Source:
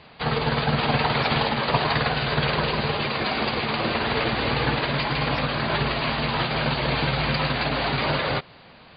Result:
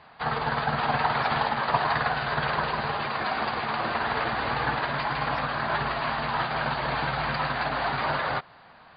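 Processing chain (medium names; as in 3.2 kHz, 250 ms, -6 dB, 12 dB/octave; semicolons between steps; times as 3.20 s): high-order bell 1.1 kHz +9 dB; trim -8.5 dB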